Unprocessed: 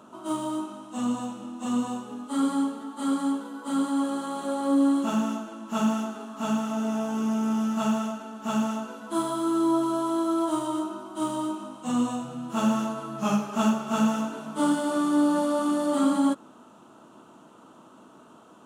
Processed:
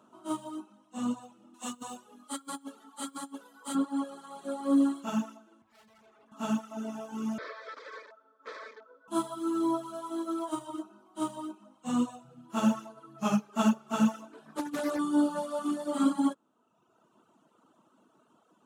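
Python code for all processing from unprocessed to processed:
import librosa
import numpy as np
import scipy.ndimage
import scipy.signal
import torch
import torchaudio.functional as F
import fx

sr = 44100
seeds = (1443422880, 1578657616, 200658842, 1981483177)

y = fx.chain(x, sr, fx.over_compress(threshold_db=-27.0, ratio=-0.5),
    fx.tilt_eq(slope=2.5), at=(1.54, 3.75))
y = fx.chain(y, sr, fx.highpass(hz=380.0, slope=12),
    fx.tilt_eq(slope=-2.0),
    fx.tube_stage(drive_db=44.0, bias=0.65), at=(5.62, 6.32))
y = fx.chain(y, sr, fx.overflow_wrap(gain_db=25.0),
    fx.cabinet(low_hz=270.0, low_slope=24, high_hz=4000.0, hz=(370.0, 530.0, 2900.0), db=(-6, 9, 7)),
    fx.fixed_phaser(hz=770.0, stages=6), at=(7.38, 9.08))
y = fx.chain(y, sr, fx.highpass(hz=45.0, slope=12),
    fx.over_compress(threshold_db=-25.0, ratio=-0.5),
    fx.doppler_dist(depth_ms=0.32), at=(14.33, 14.99))
y = fx.dereverb_blind(y, sr, rt60_s=1.4)
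y = scipy.signal.sosfilt(scipy.signal.butter(2, 86.0, 'highpass', fs=sr, output='sos'), y)
y = fx.upward_expand(y, sr, threshold_db=-41.0, expansion=1.5)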